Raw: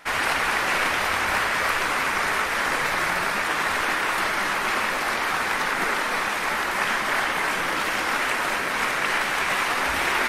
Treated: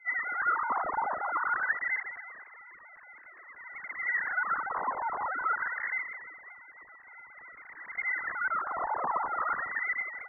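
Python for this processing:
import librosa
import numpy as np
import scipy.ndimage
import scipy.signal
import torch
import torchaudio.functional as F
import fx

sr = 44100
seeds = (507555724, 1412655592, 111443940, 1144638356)

y = fx.sine_speech(x, sr)
y = fx.wah_lfo(y, sr, hz=0.25, low_hz=310.0, high_hz=2000.0, q=7.0)
y = fx.freq_invert(y, sr, carrier_hz=2900)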